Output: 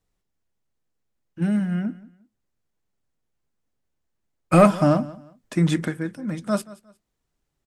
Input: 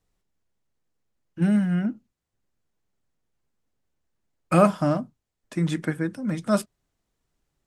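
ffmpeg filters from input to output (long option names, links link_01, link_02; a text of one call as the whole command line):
ffmpeg -i in.wav -filter_complex "[0:a]asettb=1/sr,asplit=3[link_01][link_02][link_03];[link_01]atrim=end=4.534[link_04];[link_02]atrim=start=4.53:end=5.88,asetpts=PTS-STARTPTS,afade=type=in:duration=0.004:curve=qsin,afade=type=out:start_time=1.346:duration=0.004:curve=qsin,acontrast=67[link_05];[link_03]atrim=start=5.876[link_06];[link_04][link_05]acrossfade=duration=0.004:curve1=hsin:curve2=qsin[link_07];[link_07][link_06]acrossfade=duration=0.004:curve1=qsin:curve2=hsin,asplit=2[link_08][link_09];[link_09]aecho=0:1:178|356:0.106|0.0286[link_10];[link_08][link_10]amix=inputs=2:normalize=0,volume=-1.5dB" out.wav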